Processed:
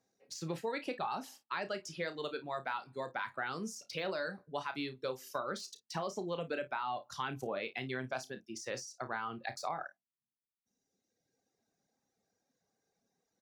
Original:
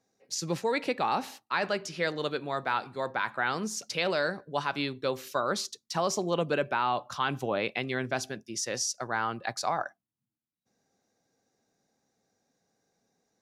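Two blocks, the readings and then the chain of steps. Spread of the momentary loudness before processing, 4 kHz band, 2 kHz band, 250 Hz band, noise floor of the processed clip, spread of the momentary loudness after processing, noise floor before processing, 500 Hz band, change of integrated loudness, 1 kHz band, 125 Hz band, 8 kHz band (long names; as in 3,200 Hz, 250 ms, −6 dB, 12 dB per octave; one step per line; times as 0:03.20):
5 LU, −10.0 dB, −8.5 dB, −8.0 dB, below −85 dBFS, 4 LU, below −85 dBFS, −8.5 dB, −9.0 dB, −8.5 dB, −8.5 dB, −13.0 dB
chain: de-essing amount 85%
reverb reduction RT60 1.6 s
downward compressor 3 to 1, threshold −31 dBFS, peak gain reduction 6 dB
ambience of single reflections 31 ms −10.5 dB, 53 ms −18 dB
level −4 dB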